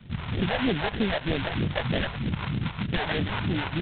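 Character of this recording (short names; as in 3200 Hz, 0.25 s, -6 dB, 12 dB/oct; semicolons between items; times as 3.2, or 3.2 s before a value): aliases and images of a low sample rate 1200 Hz, jitter 20%; phasing stages 2, 3.2 Hz, lowest notch 220–1000 Hz; G.726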